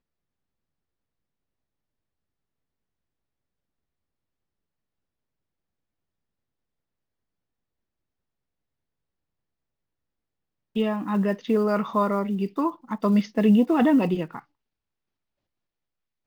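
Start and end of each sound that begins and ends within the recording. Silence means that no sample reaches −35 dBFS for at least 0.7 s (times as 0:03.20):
0:10.76–0:14.39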